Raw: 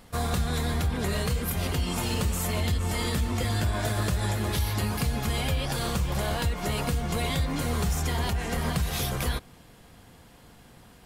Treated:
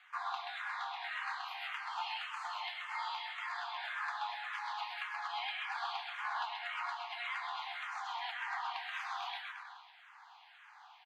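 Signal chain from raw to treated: in parallel at 0 dB: compressor, threshold -35 dBFS, peak gain reduction 12.5 dB; on the sum: bit-crush 8-bit; high shelf 5800 Hz -11 dB; notch 5400 Hz, Q 8; on a send: bouncing-ball echo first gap 0.13 s, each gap 0.9×, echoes 5; on the sum: flange 0.43 Hz, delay 9.2 ms, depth 8 ms, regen -66%; steep high-pass 770 Hz 96 dB/oct; air absorption 230 m; 0.62–1.78 flutter echo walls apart 4.8 m, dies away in 0.23 s; endless phaser -1.8 Hz; gain +2 dB

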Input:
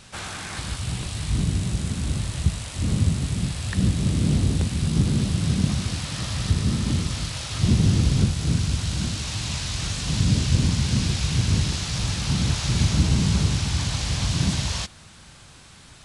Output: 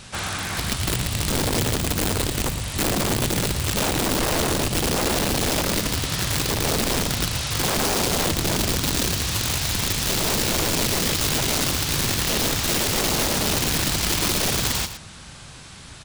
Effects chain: in parallel at -1 dB: compressor 5:1, threshold -28 dBFS, peak gain reduction 13.5 dB; on the sum: wrapped overs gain 17.5 dB; echo 0.114 s -10.5 dB

